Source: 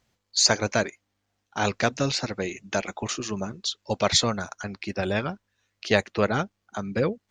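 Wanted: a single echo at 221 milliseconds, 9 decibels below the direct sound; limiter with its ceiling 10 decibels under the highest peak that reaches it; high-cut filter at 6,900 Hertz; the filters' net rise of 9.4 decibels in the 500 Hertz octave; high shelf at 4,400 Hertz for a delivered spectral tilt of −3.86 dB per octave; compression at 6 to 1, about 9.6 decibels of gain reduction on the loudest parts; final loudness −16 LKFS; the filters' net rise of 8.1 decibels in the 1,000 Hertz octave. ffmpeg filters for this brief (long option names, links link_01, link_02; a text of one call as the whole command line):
ffmpeg -i in.wav -af "lowpass=6900,equalizer=frequency=500:width_type=o:gain=9,equalizer=frequency=1000:width_type=o:gain=8,highshelf=frequency=4400:gain=-4.5,acompressor=threshold=-19dB:ratio=6,alimiter=limit=-15.5dB:level=0:latency=1,aecho=1:1:221:0.355,volume=12.5dB" out.wav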